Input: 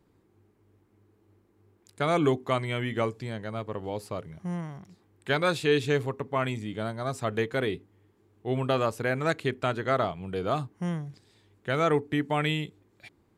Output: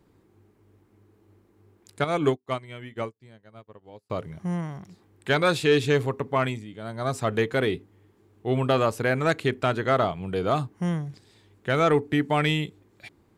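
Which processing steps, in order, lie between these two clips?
soft clipping −14 dBFS, distortion −25 dB
0:02.04–0:04.10: expander for the loud parts 2.5 to 1, over −47 dBFS
0:06.42–0:07.06: duck −10.5 dB, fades 0.24 s
level +4.5 dB

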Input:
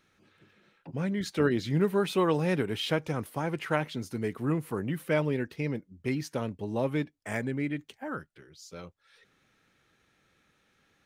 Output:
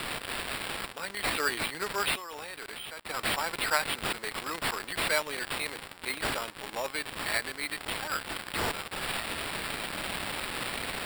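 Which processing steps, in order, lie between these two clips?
spike at every zero crossing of −28.5 dBFS
high-pass filter 1,100 Hz 12 dB per octave
high-shelf EQ 7,700 Hz −5.5 dB
0:02.16–0:03.09: output level in coarse steps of 24 dB
decimation without filtering 7×
level +7 dB

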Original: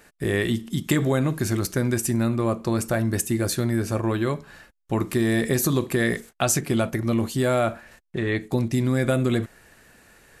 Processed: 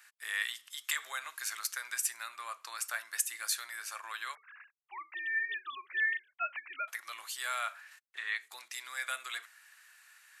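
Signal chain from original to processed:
0:04.35–0:06.88: three sine waves on the formant tracks
high-pass filter 1,200 Hz 24 dB per octave
level −4 dB

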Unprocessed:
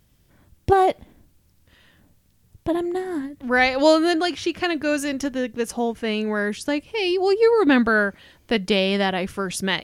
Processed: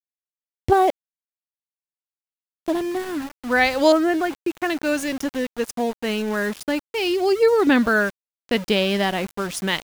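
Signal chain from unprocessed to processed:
0:00.90–0:02.68: downward compressor, threshold −50 dBFS, peak gain reduction 20.5 dB
0:03.92–0:04.70: inverse Chebyshev low-pass filter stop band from 8,800 Hz, stop band 70 dB
centre clipping without the shift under −30.5 dBFS

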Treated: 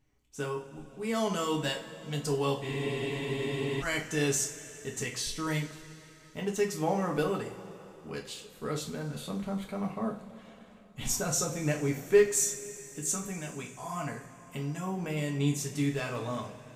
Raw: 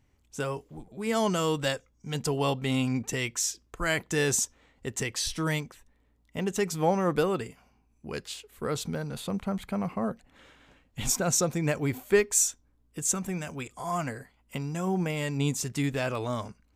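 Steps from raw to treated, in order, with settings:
coupled-rooms reverb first 0.32 s, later 3.9 s, from −20 dB, DRR −0.5 dB
frozen spectrum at 0:02.64, 1.19 s
level −6.5 dB

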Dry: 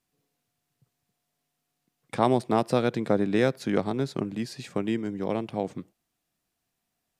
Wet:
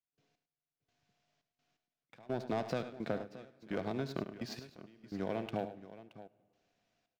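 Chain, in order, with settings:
Butterworth low-pass 6,600 Hz
parametric band 2,600 Hz +4.5 dB 1.1 octaves
leveller curve on the samples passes 2
downward compressor 6 to 1, threshold −39 dBFS, peak gain reduction 23.5 dB
hollow resonant body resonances 660/1,500 Hz, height 7 dB, ringing for 35 ms
gate pattern ".x...xxx" 85 BPM −24 dB
multi-tap delay 73/102/624 ms −14/−13/−15.5 dB
on a send at −23 dB: convolution reverb RT60 2.1 s, pre-delay 92 ms
on the sum: level +3 dB

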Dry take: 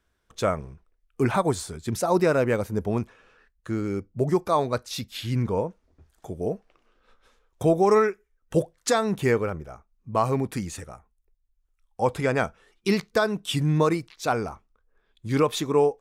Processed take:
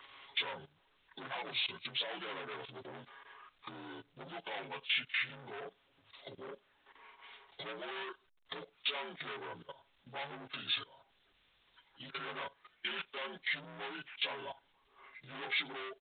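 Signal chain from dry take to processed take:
partials spread apart or drawn together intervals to 81%
in parallel at −7.5 dB: wave folding −18.5 dBFS
on the sum: healed spectral selection 0:11.90–0:12.19, 340–1,800 Hz both
upward compression, threshold −32 dBFS
noise gate with hold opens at −57 dBFS
comb filter 7.3 ms, depth 64%
floating-point word with a short mantissa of 4 bits
soft clipping −24.5 dBFS, distortion −6 dB
output level in coarse steps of 18 dB
first difference
level +14 dB
A-law companding 64 kbit/s 8,000 Hz

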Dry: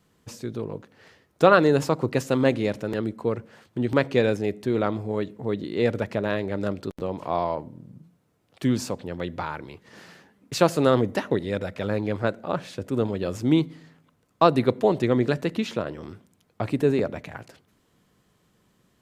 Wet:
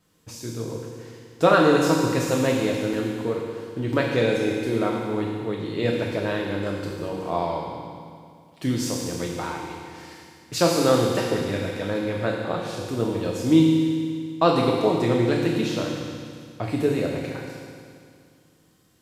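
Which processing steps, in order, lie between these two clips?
on a send: high-shelf EQ 2,800 Hz +11.5 dB + convolution reverb RT60 2.2 s, pre-delay 3 ms, DRR −2 dB
on the sum: level −2.5 dB

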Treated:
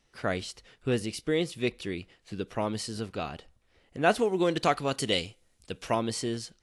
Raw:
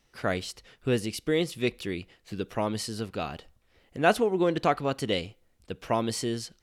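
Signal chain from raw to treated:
0:04.19–0:05.95: high-shelf EQ 3,300 Hz +11.5 dB
level −1.5 dB
AAC 64 kbit/s 24,000 Hz

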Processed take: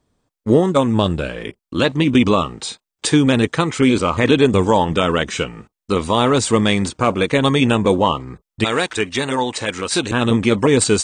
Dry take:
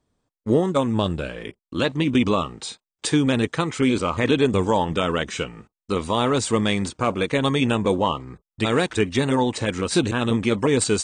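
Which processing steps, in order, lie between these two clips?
0:08.64–0:10.11: low-shelf EQ 410 Hz −11 dB
level +5.5 dB

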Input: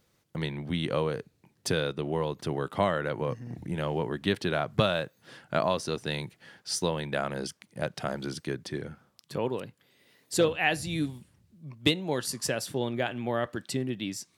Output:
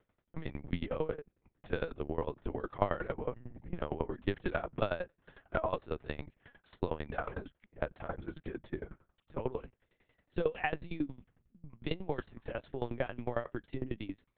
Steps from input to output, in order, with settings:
low-pass filter 2,200 Hz 12 dB per octave
linear-prediction vocoder at 8 kHz pitch kept
tremolo with a ramp in dB decaying 11 Hz, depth 20 dB

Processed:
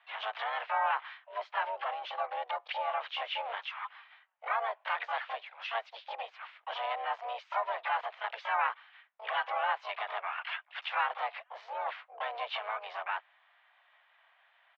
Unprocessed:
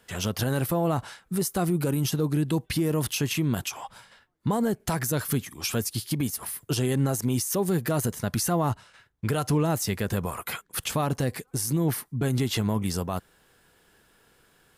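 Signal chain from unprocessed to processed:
pitch-shifted copies added −5 semitones −11 dB, +4 semitones −7 dB, +12 semitones −6 dB
single-sideband voice off tune +220 Hz 520–3,000 Hz
level −3 dB

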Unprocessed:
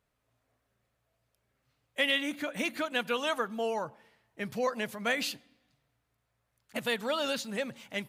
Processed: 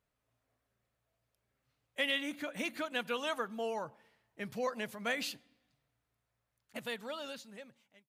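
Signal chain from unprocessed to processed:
fade-out on the ending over 1.84 s
level −5 dB

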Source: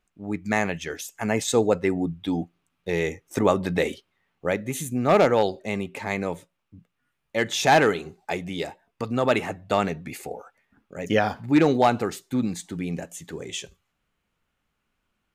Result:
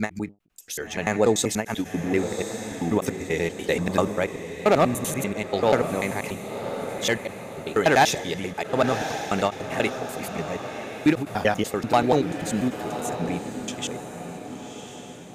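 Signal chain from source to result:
slices reordered back to front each 97 ms, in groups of 6
high-shelf EQ 6,100 Hz +5 dB
feedback delay with all-pass diffusion 1,072 ms, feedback 48%, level −9 dB
every ending faded ahead of time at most 320 dB per second

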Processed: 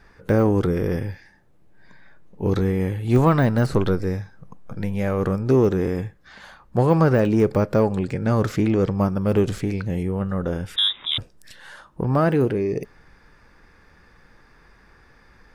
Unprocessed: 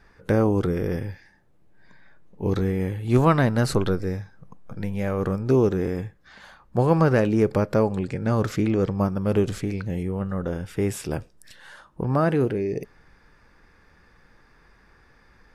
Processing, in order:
de-essing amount 90%
0:10.76–0:11.18: voice inversion scrambler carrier 3,700 Hz
in parallel at −7 dB: soft clipping −18.5 dBFS, distortion −12 dB

